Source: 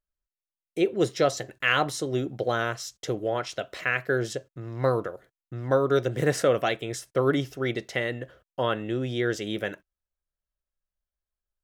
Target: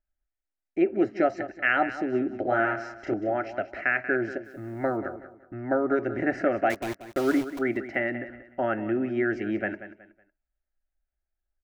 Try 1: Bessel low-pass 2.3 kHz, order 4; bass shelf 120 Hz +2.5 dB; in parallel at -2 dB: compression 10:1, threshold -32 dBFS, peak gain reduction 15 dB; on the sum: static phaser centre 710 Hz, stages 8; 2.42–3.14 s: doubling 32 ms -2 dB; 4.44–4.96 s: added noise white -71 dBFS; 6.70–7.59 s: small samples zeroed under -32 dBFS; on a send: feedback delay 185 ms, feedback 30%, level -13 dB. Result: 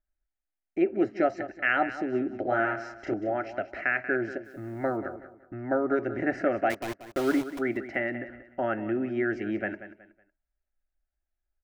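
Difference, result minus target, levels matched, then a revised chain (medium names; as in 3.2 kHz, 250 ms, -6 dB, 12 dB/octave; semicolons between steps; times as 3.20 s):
compression: peak gain reduction +7 dB
Bessel low-pass 2.3 kHz, order 4; bass shelf 120 Hz +2.5 dB; in parallel at -2 dB: compression 10:1, threshold -24 dBFS, peak gain reduction 8 dB; on the sum: static phaser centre 710 Hz, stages 8; 2.42–3.14 s: doubling 32 ms -2 dB; 4.44–4.96 s: added noise white -71 dBFS; 6.70–7.59 s: small samples zeroed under -32 dBFS; on a send: feedback delay 185 ms, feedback 30%, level -13 dB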